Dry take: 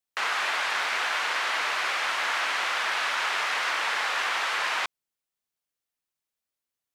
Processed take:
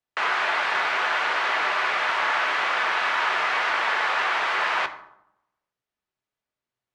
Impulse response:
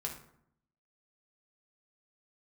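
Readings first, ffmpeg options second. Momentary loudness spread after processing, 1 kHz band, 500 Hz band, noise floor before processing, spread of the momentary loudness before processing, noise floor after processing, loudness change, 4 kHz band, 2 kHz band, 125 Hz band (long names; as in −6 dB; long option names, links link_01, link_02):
1 LU, +5.0 dB, +6.0 dB, below −85 dBFS, 1 LU, below −85 dBFS, +3.5 dB, −0.5 dB, +3.5 dB, can't be measured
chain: -filter_complex "[0:a]aemphasis=mode=reproduction:type=75fm,asplit=2[link_01][link_02];[1:a]atrim=start_sample=2205,asetrate=37485,aresample=44100,highshelf=frequency=9000:gain=-11.5[link_03];[link_02][link_03]afir=irnorm=-1:irlink=0,volume=-1dB[link_04];[link_01][link_04]amix=inputs=2:normalize=0"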